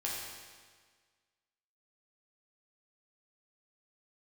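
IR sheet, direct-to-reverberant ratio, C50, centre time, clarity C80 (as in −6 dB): −5.0 dB, 0.0 dB, 90 ms, 2.0 dB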